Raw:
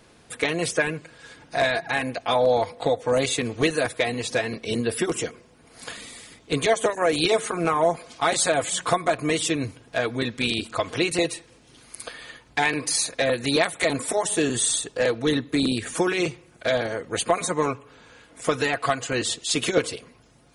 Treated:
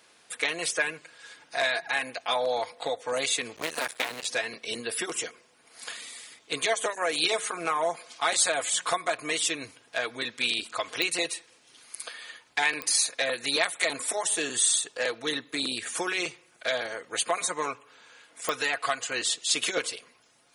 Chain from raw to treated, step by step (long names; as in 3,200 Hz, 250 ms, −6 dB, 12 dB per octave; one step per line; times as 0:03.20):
0:03.56–0:04.26: sub-harmonics by changed cycles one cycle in 2, muted
high-pass filter 1,300 Hz 6 dB per octave
digital clicks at 0:11.02/0:12.82/0:18.49, −12 dBFS